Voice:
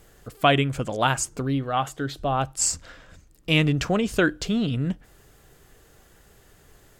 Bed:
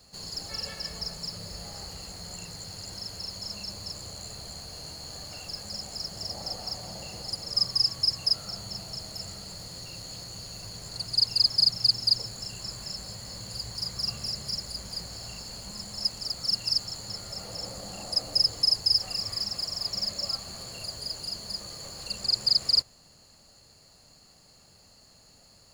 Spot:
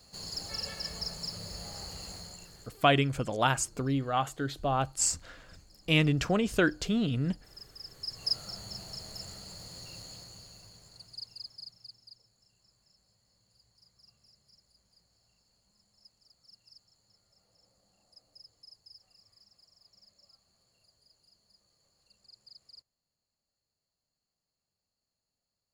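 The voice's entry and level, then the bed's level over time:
2.40 s, -4.5 dB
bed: 2.15 s -2 dB
2.93 s -24.5 dB
7.76 s -24.5 dB
8.31 s -5 dB
10.00 s -5 dB
12.19 s -31.5 dB

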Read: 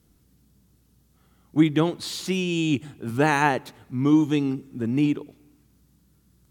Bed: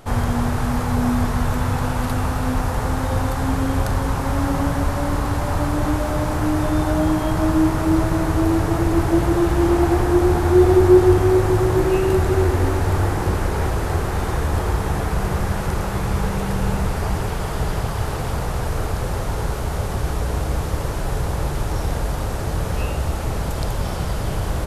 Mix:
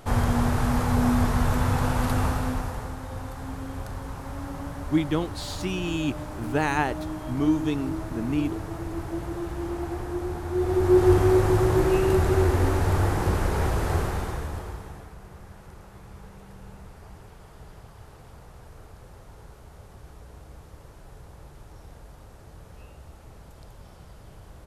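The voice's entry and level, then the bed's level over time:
3.35 s, -4.5 dB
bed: 2.26 s -2.5 dB
2.98 s -14.5 dB
10.49 s -14.5 dB
11.12 s -3.5 dB
14.00 s -3.5 dB
15.18 s -23.5 dB

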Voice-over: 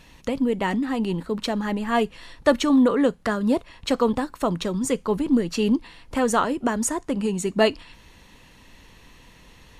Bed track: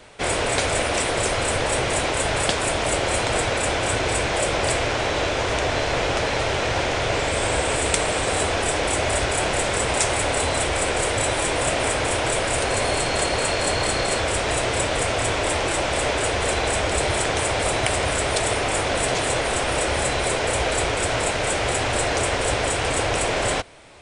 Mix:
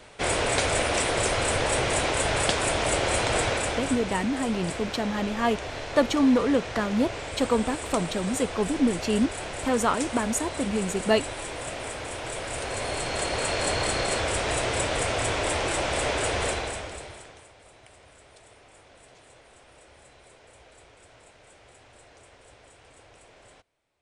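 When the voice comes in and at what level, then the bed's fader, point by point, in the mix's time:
3.50 s, -3.0 dB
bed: 3.48 s -2.5 dB
4.15 s -12.5 dB
12.14 s -12.5 dB
13.63 s -4 dB
16.45 s -4 dB
17.54 s -31 dB

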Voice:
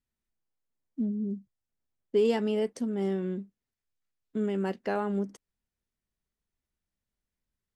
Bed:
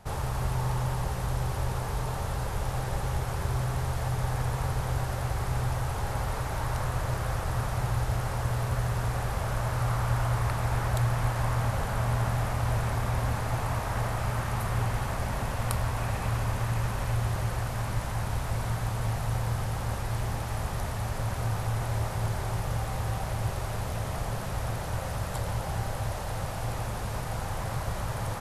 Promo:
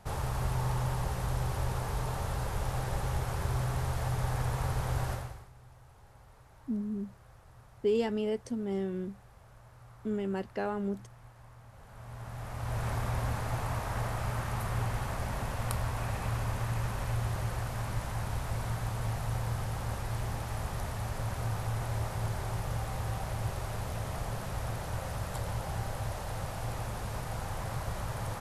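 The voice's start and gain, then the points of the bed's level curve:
5.70 s, -3.5 dB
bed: 5.12 s -2.5 dB
5.52 s -26 dB
11.67 s -26 dB
12.88 s -4 dB

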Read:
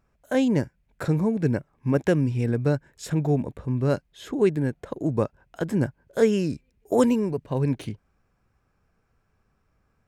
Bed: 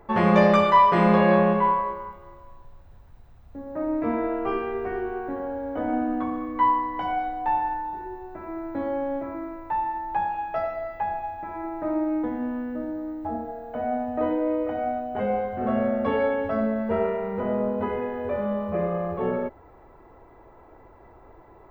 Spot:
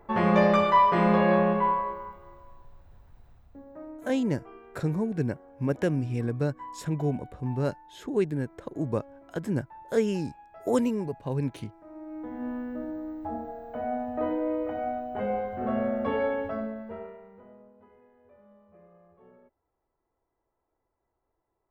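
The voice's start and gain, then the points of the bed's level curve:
3.75 s, -5.0 dB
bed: 3.32 s -3.5 dB
4.15 s -21.5 dB
11.87 s -21.5 dB
12.48 s -4 dB
16.39 s -4 dB
17.73 s -30.5 dB

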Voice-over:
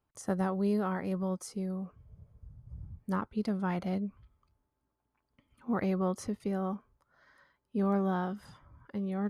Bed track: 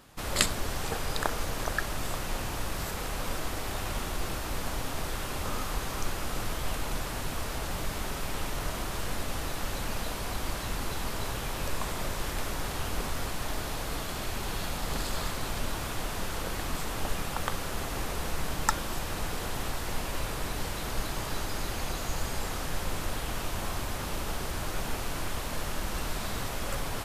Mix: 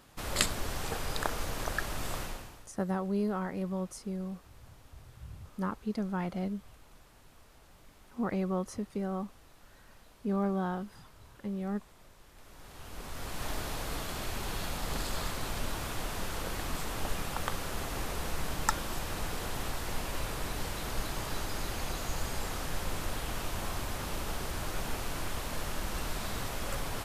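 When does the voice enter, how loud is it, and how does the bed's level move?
2.50 s, -1.5 dB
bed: 2.22 s -3 dB
2.71 s -24.5 dB
12.29 s -24.5 dB
13.45 s -2.5 dB

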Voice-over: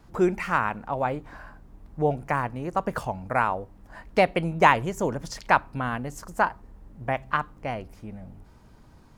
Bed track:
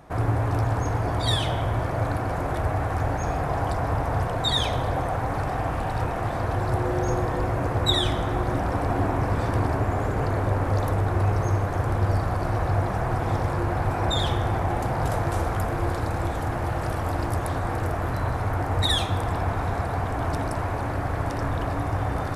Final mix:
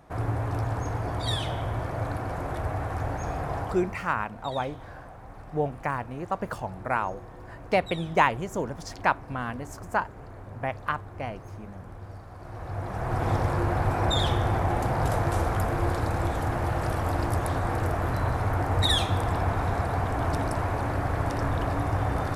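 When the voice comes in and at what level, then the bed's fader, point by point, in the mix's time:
3.55 s, -3.5 dB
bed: 3.58 s -5 dB
4.10 s -19.5 dB
12.30 s -19.5 dB
13.24 s -0.5 dB

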